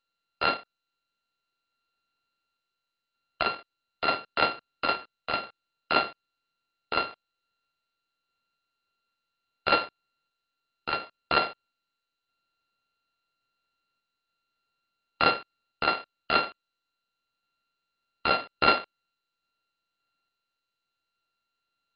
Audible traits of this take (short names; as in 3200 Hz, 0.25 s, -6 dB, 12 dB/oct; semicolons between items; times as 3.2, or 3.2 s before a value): a buzz of ramps at a fixed pitch in blocks of 32 samples; random-step tremolo; MP2